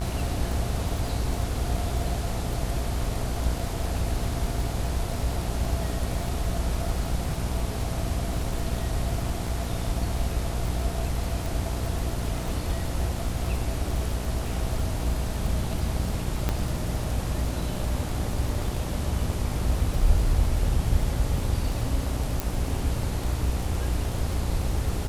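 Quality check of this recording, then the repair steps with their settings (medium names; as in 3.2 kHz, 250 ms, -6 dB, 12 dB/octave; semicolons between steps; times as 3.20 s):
buzz 60 Hz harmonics 24 -31 dBFS
crackle 43 per s -30 dBFS
11.46 s: pop
16.49 s: pop -11 dBFS
22.40 s: pop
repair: de-click; de-hum 60 Hz, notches 24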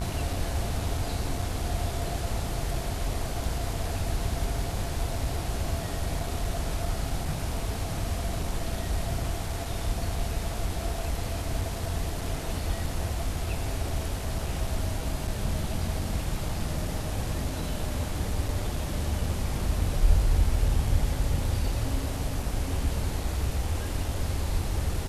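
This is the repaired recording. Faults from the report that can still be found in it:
22.40 s: pop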